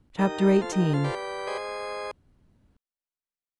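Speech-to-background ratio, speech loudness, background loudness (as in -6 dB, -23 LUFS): 8.5 dB, -25.0 LUFS, -33.5 LUFS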